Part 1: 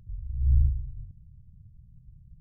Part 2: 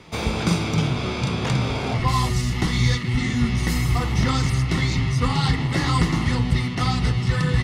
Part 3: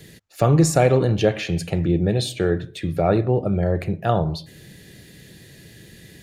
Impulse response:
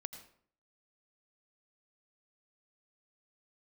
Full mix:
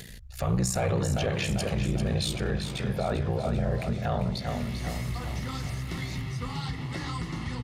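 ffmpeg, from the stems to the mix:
-filter_complex "[0:a]volume=-13.5dB[a];[1:a]acompressor=threshold=-21dB:ratio=4,adelay=1200,volume=-9dB,asplit=2[b][c];[c]volume=-15.5dB[d];[2:a]equalizer=f=320:t=o:w=1.1:g=-10.5,asoftclip=type=tanh:threshold=-8.5dB,aeval=exprs='val(0)*sin(2*PI*30*n/s)':c=same,volume=0.5dB,asplit=3[e][f][g];[f]volume=-9dB[h];[g]apad=whole_len=389496[i];[b][i]sidechaincompress=threshold=-38dB:ratio=8:attack=16:release=260[j];[d][h]amix=inputs=2:normalize=0,aecho=0:1:394|788|1182|1576|1970|2364|2758|3152:1|0.55|0.303|0.166|0.0915|0.0503|0.0277|0.0152[k];[a][j][e][k]amix=inputs=4:normalize=0,acompressor=mode=upward:threshold=-39dB:ratio=2.5,alimiter=limit=-18.5dB:level=0:latency=1:release=17"

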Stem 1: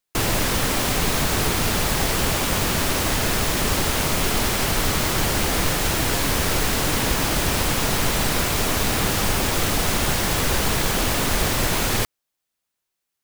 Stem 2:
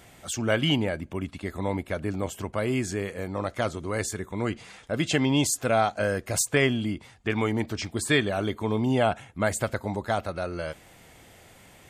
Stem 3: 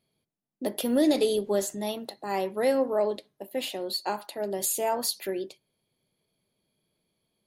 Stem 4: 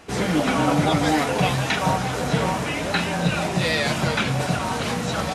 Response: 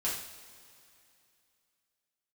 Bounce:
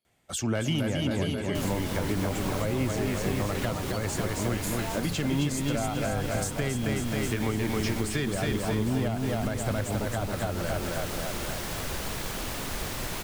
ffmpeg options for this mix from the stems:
-filter_complex "[0:a]adelay=1400,volume=-12dB[a];[1:a]agate=range=-20dB:threshold=-46dB:ratio=16:detection=peak,asoftclip=type=hard:threshold=-17dB,adelay=50,volume=2dB,asplit=2[b][c];[c]volume=-3.5dB[d];[2:a]lowshelf=f=260:g=-11.5,volume=-6dB[e];[3:a]adelay=1850,volume=-14dB[f];[d]aecho=0:1:269|538|807|1076|1345|1614|1883|2152|2421:1|0.59|0.348|0.205|0.121|0.0715|0.0422|0.0249|0.0147[g];[a][b][e][f][g]amix=inputs=5:normalize=0,acrossover=split=240[h][i];[i]acompressor=threshold=-30dB:ratio=2.5[j];[h][j]amix=inputs=2:normalize=0,alimiter=limit=-17.5dB:level=0:latency=1:release=350"

